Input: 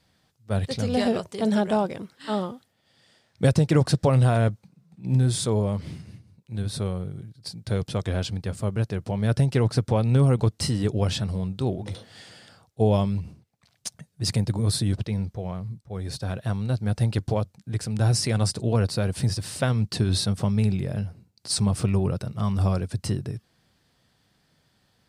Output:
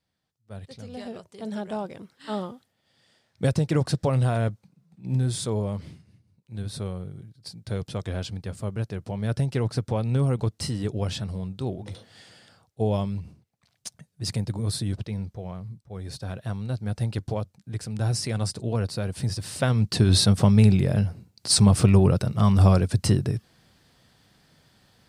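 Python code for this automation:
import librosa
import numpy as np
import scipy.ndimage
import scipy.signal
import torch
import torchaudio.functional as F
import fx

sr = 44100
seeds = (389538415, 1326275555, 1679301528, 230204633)

y = fx.gain(x, sr, db=fx.line((1.03, -14.5), (2.33, -3.5), (5.83, -3.5), (6.05, -14.5), (6.58, -4.0), (19.17, -4.0), (20.25, 6.0)))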